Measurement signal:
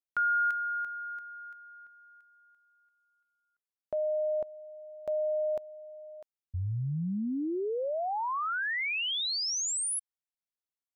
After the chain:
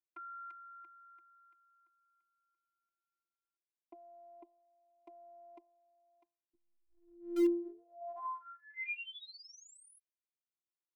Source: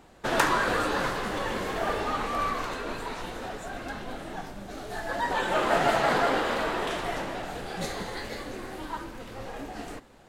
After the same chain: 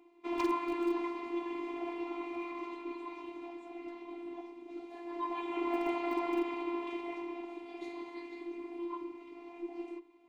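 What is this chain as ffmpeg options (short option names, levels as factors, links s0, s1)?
-filter_complex "[0:a]asplit=3[s0][s1][s2];[s0]bandpass=f=300:t=q:w=8,volume=1[s3];[s1]bandpass=f=870:t=q:w=8,volume=0.501[s4];[s2]bandpass=f=2240:t=q:w=8,volume=0.355[s5];[s3][s4][s5]amix=inputs=3:normalize=0,acrossover=split=190|2000[s6][s7][s8];[s6]acrusher=bits=7:mix=0:aa=0.000001[s9];[s9][s7][s8]amix=inputs=3:normalize=0,bandreject=f=132:t=h:w=4,bandreject=f=264:t=h:w=4,bandreject=f=396:t=h:w=4,bandreject=f=528:t=h:w=4,bandreject=f=660:t=h:w=4,bandreject=f=792:t=h:w=4,bandreject=f=924:t=h:w=4,afftfilt=real='hypot(re,im)*cos(PI*b)':imag='0':win_size=512:overlap=0.75,aeval=exprs='0.0355*(abs(mod(val(0)/0.0355+3,4)-2)-1)':c=same,volume=2.51"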